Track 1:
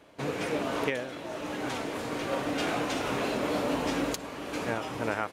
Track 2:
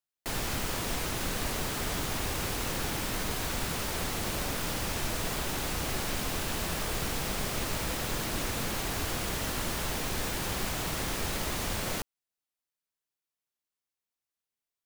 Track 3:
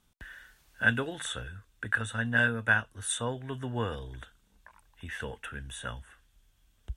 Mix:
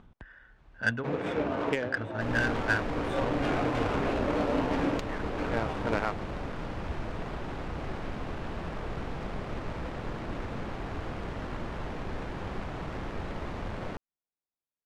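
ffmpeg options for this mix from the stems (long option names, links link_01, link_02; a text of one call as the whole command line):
ffmpeg -i stem1.wav -i stem2.wav -i stem3.wav -filter_complex "[0:a]adelay=850,volume=1dB[link_01];[1:a]adelay=1950,volume=-1dB[link_02];[2:a]acompressor=mode=upward:threshold=-37dB:ratio=2.5,volume=-2.5dB[link_03];[link_01][link_02][link_03]amix=inputs=3:normalize=0,adynamicsmooth=sensitivity=1.5:basefreq=1400" out.wav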